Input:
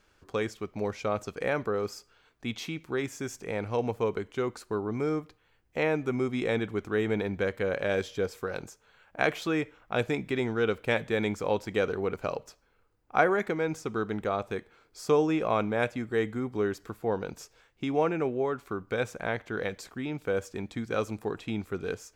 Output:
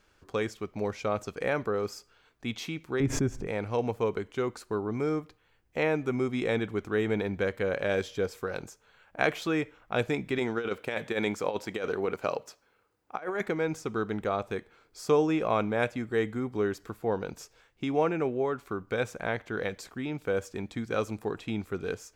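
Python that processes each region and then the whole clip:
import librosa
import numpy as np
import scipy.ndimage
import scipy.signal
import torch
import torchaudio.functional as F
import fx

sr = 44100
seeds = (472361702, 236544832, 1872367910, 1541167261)

y = fx.chain(x, sr, fx.tilt_eq(slope=-4.0),
    fx.pre_swell(db_per_s=76.0), at=(3.0, 3.47))
y = fx.chain(y, sr, fx.highpass(hz=250.0, slope=6),
    fx.over_compress(threshold_db=-29.0, ratio=-0.5), at=(10.38, 13.41))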